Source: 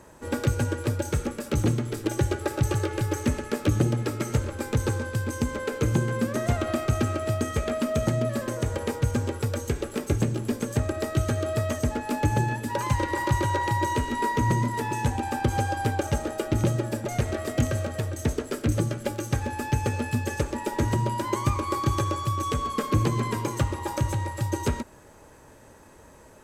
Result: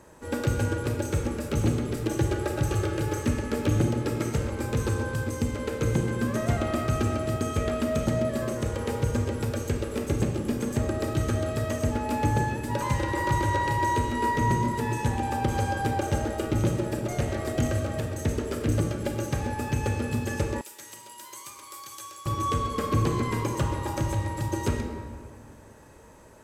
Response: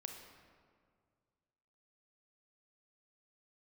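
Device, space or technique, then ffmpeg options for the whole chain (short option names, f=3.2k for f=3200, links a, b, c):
stairwell: -filter_complex "[1:a]atrim=start_sample=2205[a];[0:a][a]afir=irnorm=-1:irlink=0,asettb=1/sr,asplit=3[b][c][d];[b]atrim=end=20.614[e];[c]atrim=start=20.61:end=22.26,asetpts=PTS-STARTPTS,afade=t=in:d=0.004:c=qsin,afade=t=out:st=1.646:d=0.004:c=qsin,aderivative[f];[d]atrim=start=22.256[g];[e][f]acrossfade=d=0.004:c1=hsin:c2=qsin[h];[h][g]acrossfade=d=0.004:c1=qsin:c2=hsin,volume=2.5dB"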